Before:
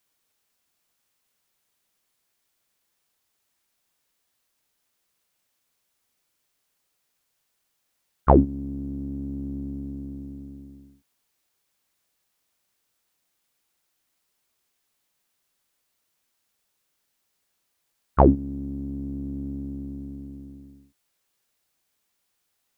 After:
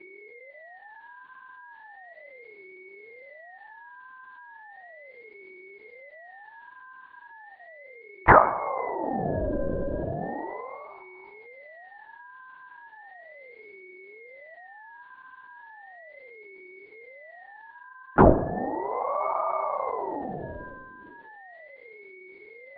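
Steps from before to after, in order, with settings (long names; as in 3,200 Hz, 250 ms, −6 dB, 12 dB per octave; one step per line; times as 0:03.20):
automatic gain control gain up to 6 dB
steady tone 1,300 Hz −46 dBFS
on a send at −10 dB: convolution reverb RT60 0.75 s, pre-delay 4 ms
on the sum: linear-prediction vocoder at 8 kHz whisper
ring modulator whose carrier an LFO sweeps 600 Hz, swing 55%, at 0.36 Hz
level +3.5 dB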